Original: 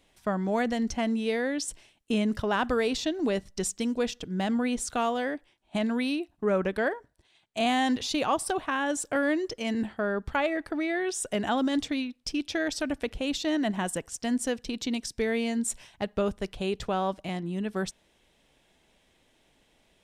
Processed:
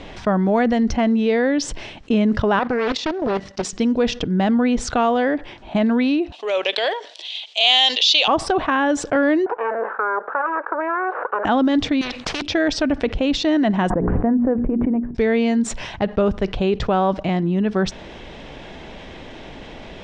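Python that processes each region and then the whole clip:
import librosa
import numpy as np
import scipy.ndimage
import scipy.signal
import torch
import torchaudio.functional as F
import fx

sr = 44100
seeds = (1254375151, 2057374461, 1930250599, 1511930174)

y = fx.chain(x, sr, fx.highpass(hz=480.0, slope=6),
    fx.level_steps(step_db=11),
    fx.doppler_dist(depth_ms=0.73), at=(2.59, 3.73))
y = fx.chain(y, sr, fx.highpass(hz=530.0, slope=24),
    fx.transient(attack_db=-8, sustain_db=-2),
    fx.high_shelf_res(hz=2200.0, db=13.5, q=3.0), at=(6.32, 8.28))
y = fx.chain(y, sr, fx.lower_of_two(delay_ms=0.75),
    fx.ellip_bandpass(low_hz=460.0, high_hz=1600.0, order=3, stop_db=60),
    fx.band_squash(depth_pct=70), at=(9.46, 11.45))
y = fx.chain(y, sr, fx.low_shelf(hz=490.0, db=-11.5),
    fx.spectral_comp(ratio=4.0), at=(12.01, 12.42))
y = fx.chain(y, sr, fx.gaussian_blur(sigma=6.9),
    fx.hum_notches(base_hz=60, count=7),
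    fx.pre_swell(db_per_s=22.0), at=(13.9, 15.15))
y = scipy.signal.sosfilt(scipy.signal.butter(4, 6000.0, 'lowpass', fs=sr, output='sos'), y)
y = fx.high_shelf(y, sr, hz=2900.0, db=-11.5)
y = fx.env_flatten(y, sr, amount_pct=50)
y = y * 10.0 ** (7.5 / 20.0)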